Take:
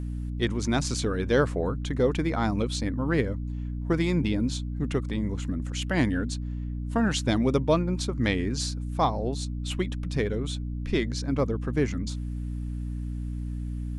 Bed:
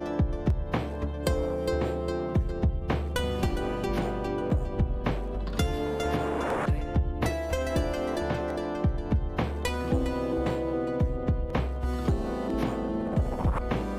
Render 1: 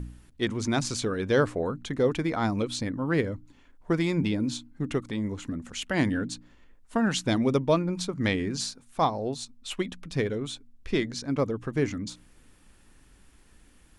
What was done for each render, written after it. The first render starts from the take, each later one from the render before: de-hum 60 Hz, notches 5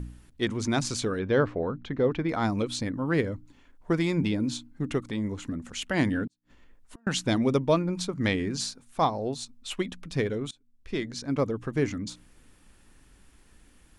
1.19–2.29 s: distance through air 230 m; 6.27–7.07 s: inverted gate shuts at -34 dBFS, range -39 dB; 10.51–11.32 s: fade in, from -24 dB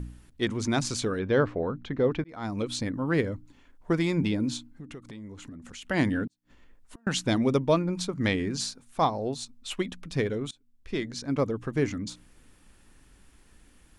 2.24–2.72 s: fade in; 4.68–5.85 s: compression 4:1, threshold -41 dBFS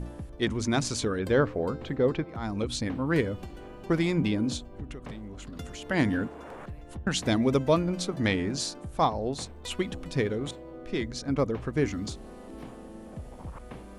add bed -14.5 dB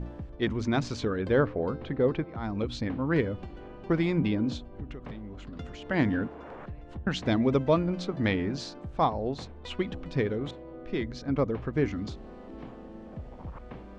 distance through air 180 m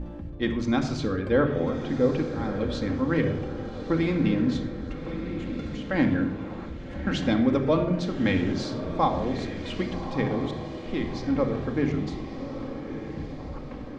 echo that smears into a reverb 1225 ms, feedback 52%, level -10 dB; simulated room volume 3300 m³, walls furnished, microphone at 2.2 m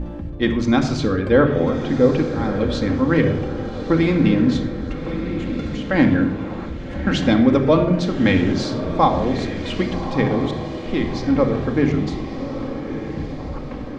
trim +7.5 dB

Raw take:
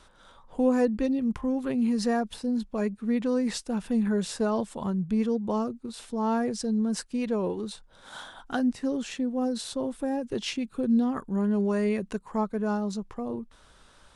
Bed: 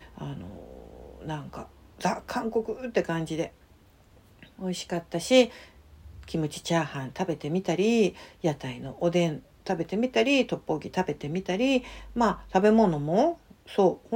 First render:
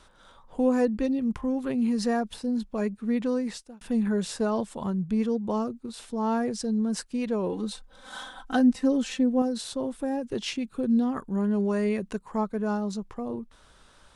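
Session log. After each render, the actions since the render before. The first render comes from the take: 3.29–3.81 s: fade out; 7.52–9.42 s: comb 3.9 ms, depth 91%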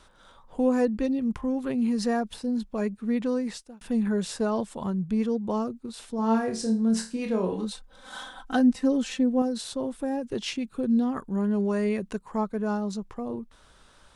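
6.16–7.65 s: flutter echo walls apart 4.6 m, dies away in 0.32 s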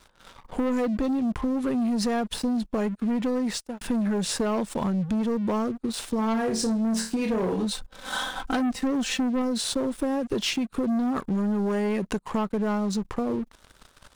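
waveshaping leveller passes 3; compression, threshold -24 dBFS, peak gain reduction 9 dB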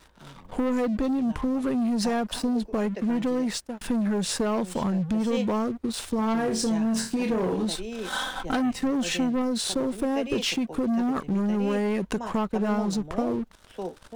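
add bed -12.5 dB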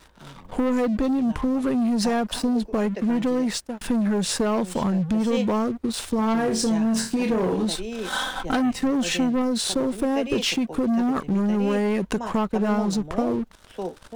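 trim +3 dB

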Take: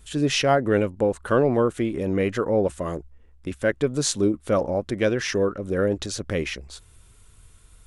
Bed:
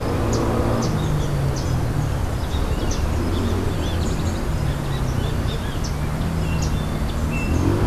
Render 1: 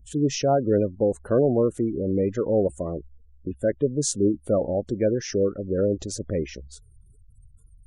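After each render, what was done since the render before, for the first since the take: spectral gate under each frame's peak -20 dB strong; high-order bell 2 kHz -11.5 dB 2.5 oct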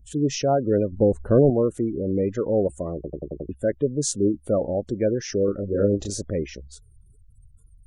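0.92–1.50 s: tilt EQ -2.5 dB/octave; 2.95 s: stutter in place 0.09 s, 6 plays; 5.45–6.22 s: doubling 30 ms -2.5 dB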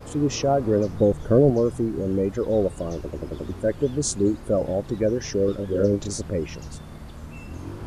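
add bed -16.5 dB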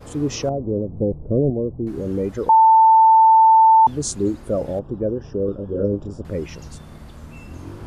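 0.49–1.87 s: Gaussian low-pass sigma 13 samples; 2.49–3.87 s: bleep 890 Hz -8 dBFS; 4.79–6.25 s: boxcar filter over 21 samples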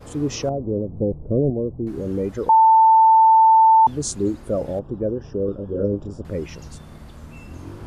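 trim -1 dB

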